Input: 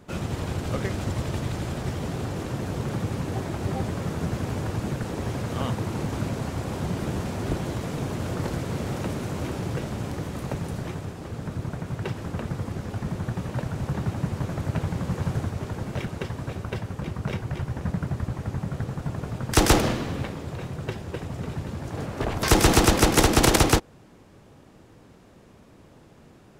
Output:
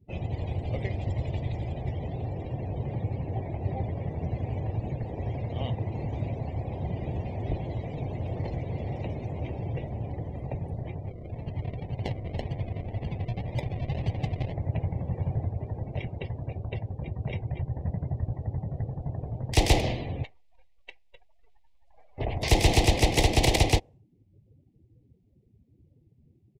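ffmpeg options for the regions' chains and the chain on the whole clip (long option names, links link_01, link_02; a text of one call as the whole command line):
ffmpeg -i in.wav -filter_complex "[0:a]asettb=1/sr,asplit=3[link_01][link_02][link_03];[link_01]atrim=end=11.054[link_04];[link_02]atrim=start=11.05:end=14.53,asetpts=PTS-STARTPTS,afade=type=in:duration=0.004:curve=qsin,afade=type=out:start_time=3.476:duration=0.004:curve=qsin,equalizer=frequency=3000:width=0.88:gain=12.5,acrusher=samples=41:mix=1:aa=0.000001:lfo=1:lforange=24.6:lforate=1.9[link_05];[link_03]atrim=start=14.526[link_06];[link_04][link_05]acrossfade=duration=0.004:curve1=hsin:curve2=qsin[link_07];[link_07][link_06]acrossfade=duration=0.004:curve1=qsin:curve2=hsin,asettb=1/sr,asplit=3[link_08][link_09][link_10];[link_08]atrim=end=20.244[link_11];[link_09]atrim=start=20.24:end=22.18,asetpts=PTS-STARTPTS,afade=type=in:duration=0.004:curve=qsin,afade=type=out:start_time=1.936:duration=0.004:curve=qsin,highpass=1000,acrusher=bits=6:dc=4:mix=0:aa=0.000001[link_12];[link_10]atrim=start=22.176[link_13];[link_11][link_12]acrossfade=duration=0.004:curve1=hsin:curve2=qsin[link_14];[link_14][link_13]acrossfade=duration=0.004:curve1=qsin:curve2=hsin,afftdn=noise_reduction=29:noise_floor=-41,firequalizer=gain_entry='entry(110,0);entry(190,-9);entry(740,-1);entry(1400,-28);entry(2000,-1);entry(4100,-2);entry(6200,-7);entry(12000,-11)':delay=0.05:min_phase=1" out.wav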